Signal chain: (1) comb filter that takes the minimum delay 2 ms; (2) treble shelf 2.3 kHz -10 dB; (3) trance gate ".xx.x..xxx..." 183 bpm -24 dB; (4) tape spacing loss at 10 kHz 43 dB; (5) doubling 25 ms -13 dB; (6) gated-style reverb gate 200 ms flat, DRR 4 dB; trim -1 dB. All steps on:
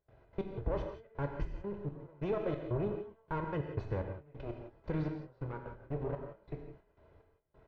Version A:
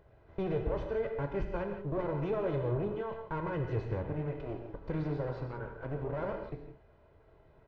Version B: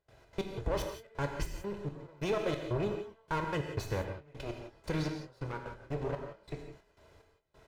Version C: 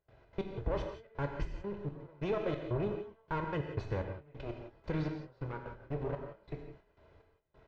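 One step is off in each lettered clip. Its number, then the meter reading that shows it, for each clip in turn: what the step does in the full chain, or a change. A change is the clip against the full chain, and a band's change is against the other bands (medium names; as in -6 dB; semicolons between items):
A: 3, crest factor change -3.0 dB; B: 4, 4 kHz band +13.0 dB; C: 2, 4 kHz band +6.5 dB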